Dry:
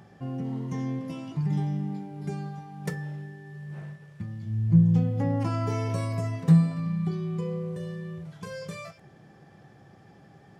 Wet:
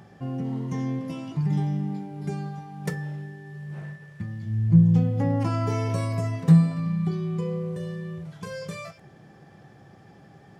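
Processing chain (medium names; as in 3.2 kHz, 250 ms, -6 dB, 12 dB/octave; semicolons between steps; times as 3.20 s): 3.84–4.69 s: peaking EQ 1.8 kHz +6 dB 0.21 oct; trim +2.5 dB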